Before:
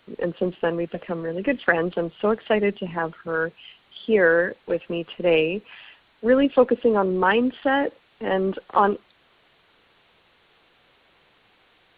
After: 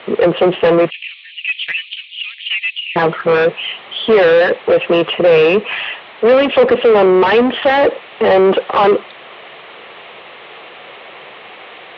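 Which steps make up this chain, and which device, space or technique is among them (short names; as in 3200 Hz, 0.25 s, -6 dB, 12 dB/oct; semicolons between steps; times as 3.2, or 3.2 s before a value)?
0.9–2.96 Chebyshev high-pass 2400 Hz, order 5; overdrive pedal into a guitar cabinet (overdrive pedal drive 34 dB, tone 1400 Hz, clips at -5 dBFS; speaker cabinet 92–3500 Hz, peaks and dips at 110 Hz -4 dB, 180 Hz -3 dB, 280 Hz -8 dB, 920 Hz -4 dB, 1500 Hz -8 dB); gain +4.5 dB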